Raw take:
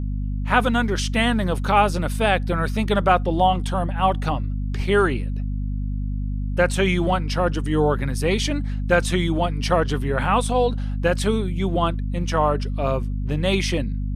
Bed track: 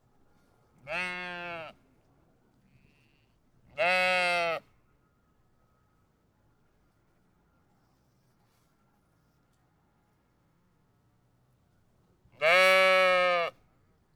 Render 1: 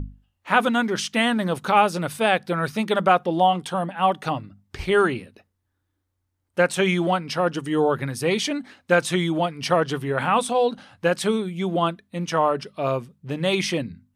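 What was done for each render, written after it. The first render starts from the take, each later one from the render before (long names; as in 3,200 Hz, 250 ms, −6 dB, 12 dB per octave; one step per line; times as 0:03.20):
mains-hum notches 50/100/150/200/250 Hz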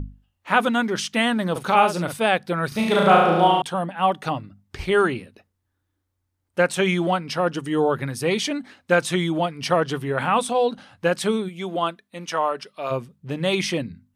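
0:01.51–0:02.14: double-tracking delay 46 ms −7 dB
0:02.68–0:03.62: flutter between parallel walls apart 6.1 metres, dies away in 1.1 s
0:11.48–0:12.90: high-pass filter 350 Hz → 830 Hz 6 dB per octave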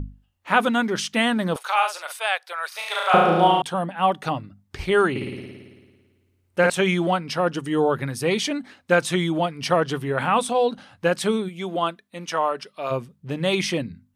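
0:01.56–0:03.14: Bessel high-pass filter 990 Hz, order 6
0:05.10–0:06.70: flutter between parallel walls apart 9.5 metres, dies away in 1.5 s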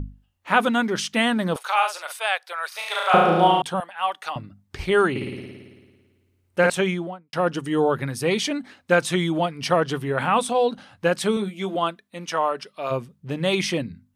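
0:03.80–0:04.36: high-pass filter 970 Hz
0:06.69–0:07.33: fade out and dull
0:11.35–0:11.75: double-tracking delay 15 ms −5 dB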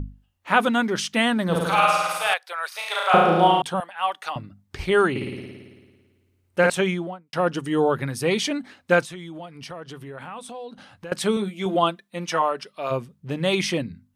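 0:01.44–0:02.34: flutter between parallel walls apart 9 metres, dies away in 1.4 s
0:09.03–0:11.12: downward compressor 3 to 1, threshold −39 dBFS
0:11.65–0:12.42: comb filter 5.7 ms, depth 75%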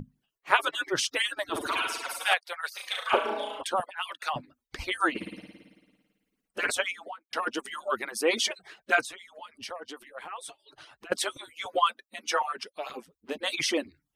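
harmonic-percussive split with one part muted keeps percussive
low-shelf EQ 220 Hz −6.5 dB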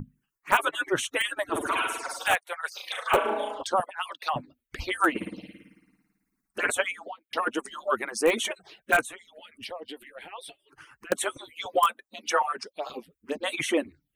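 in parallel at −5.5 dB: wrap-around overflow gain 14 dB
on the sum: phaser swept by the level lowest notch 530 Hz, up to 4,900 Hz, full sweep at −25 dBFS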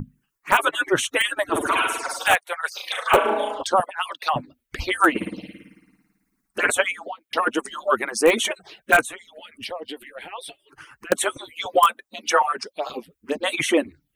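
level +6 dB
brickwall limiter −2 dBFS, peak gain reduction 3 dB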